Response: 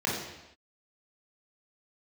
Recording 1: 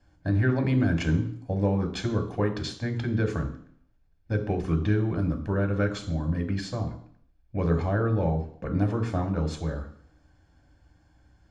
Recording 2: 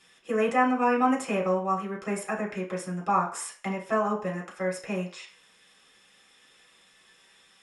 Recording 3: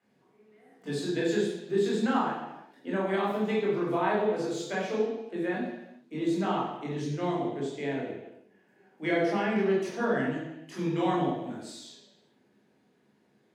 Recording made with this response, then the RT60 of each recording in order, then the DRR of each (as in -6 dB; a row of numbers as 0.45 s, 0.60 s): 3; 0.60 s, 0.45 s, no single decay rate; 5.0 dB, -4.0 dB, -5.5 dB